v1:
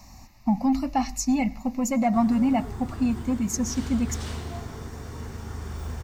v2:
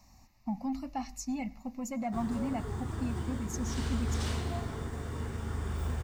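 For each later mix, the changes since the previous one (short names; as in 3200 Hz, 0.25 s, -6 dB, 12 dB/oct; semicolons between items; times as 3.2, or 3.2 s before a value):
speech -12.0 dB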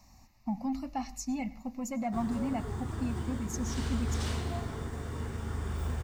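speech: send +6.0 dB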